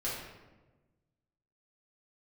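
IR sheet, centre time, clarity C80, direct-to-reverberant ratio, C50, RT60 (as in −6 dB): 67 ms, 4.0 dB, −9.0 dB, 0.5 dB, 1.2 s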